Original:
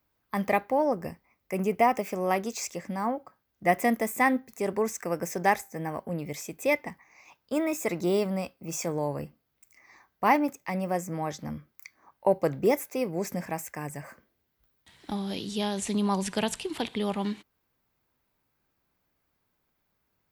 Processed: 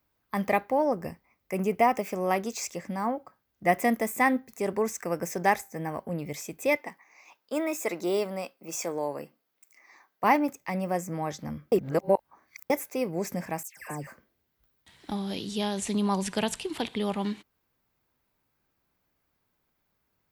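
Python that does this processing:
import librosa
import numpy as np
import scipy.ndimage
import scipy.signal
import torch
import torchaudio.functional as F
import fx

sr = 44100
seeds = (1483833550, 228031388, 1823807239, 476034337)

y = fx.highpass(x, sr, hz=300.0, slope=12, at=(6.77, 10.24))
y = fx.dispersion(y, sr, late='lows', ms=141.0, hz=2200.0, at=(13.63, 14.07))
y = fx.edit(y, sr, fx.reverse_span(start_s=11.72, length_s=0.98), tone=tone)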